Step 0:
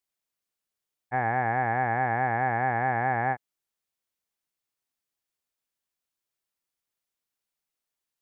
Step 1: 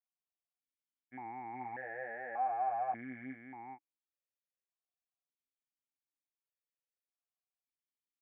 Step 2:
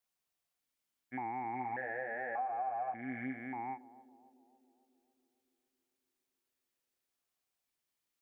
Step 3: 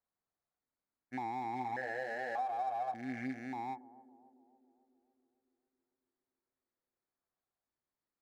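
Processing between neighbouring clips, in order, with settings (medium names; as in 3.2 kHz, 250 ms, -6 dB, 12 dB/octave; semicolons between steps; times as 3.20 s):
delay 415 ms -3.5 dB; stepped vowel filter 1.7 Hz; trim -5 dB
compression 6:1, threshold -44 dBFS, peak gain reduction 12.5 dB; band-passed feedback delay 278 ms, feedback 69%, band-pass 390 Hz, level -16 dB; trim +8.5 dB
local Wiener filter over 15 samples; trim +1 dB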